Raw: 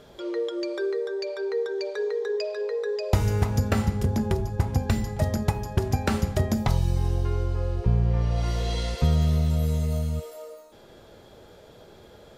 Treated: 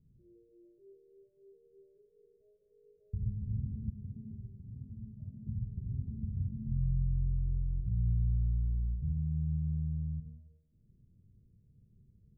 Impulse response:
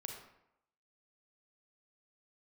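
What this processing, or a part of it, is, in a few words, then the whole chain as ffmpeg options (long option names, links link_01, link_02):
club heard from the street: -filter_complex "[0:a]alimiter=limit=-17.5dB:level=0:latency=1:release=72,lowpass=frequency=180:width=0.5412,lowpass=frequency=180:width=1.3066[link_01];[1:a]atrim=start_sample=2205[link_02];[link_01][link_02]afir=irnorm=-1:irlink=0,asettb=1/sr,asplit=3[link_03][link_04][link_05];[link_03]atrim=end=3.904[link_06];[link_04]atrim=start=3.9:end=5.47,asetpts=PTS-STARTPTS,afade=type=in:duration=0.004:curve=qsin,afade=type=out:start_time=1.566:duration=0.004:curve=qsin,aemphasis=mode=production:type=bsi[link_07];[link_05]atrim=start=5.466[link_08];[link_06][link_07]acrossfade=duration=0.004:curve1=hsin:curve2=qsin[link_09];[link_09][link_08]acrossfade=duration=0.004:curve1=qsin:curve2=hsin,volume=-4dB"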